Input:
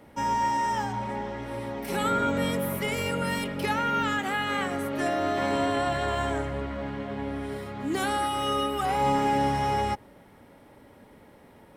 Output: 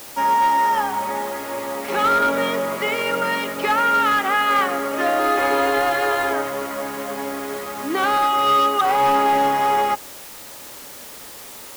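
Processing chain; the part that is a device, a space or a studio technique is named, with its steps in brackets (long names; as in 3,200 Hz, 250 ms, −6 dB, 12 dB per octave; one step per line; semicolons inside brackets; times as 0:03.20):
drive-through speaker (band-pass filter 370–3,500 Hz; parametric band 1,200 Hz +8 dB 0.22 octaves; hard clipping −21 dBFS, distortion −20 dB; white noise bed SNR 18 dB)
0:05.19–0:06.33: comb filter 2.4 ms, depth 62%
level +8.5 dB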